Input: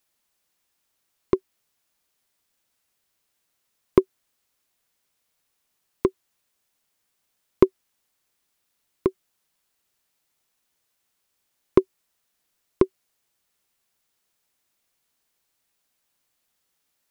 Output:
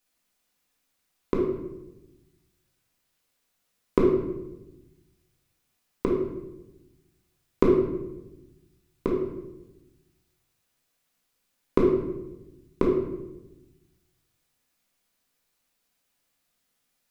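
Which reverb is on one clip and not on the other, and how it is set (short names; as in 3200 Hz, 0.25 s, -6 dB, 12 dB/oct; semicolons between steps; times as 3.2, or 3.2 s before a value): shoebox room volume 390 m³, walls mixed, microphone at 1.9 m; gain -4.5 dB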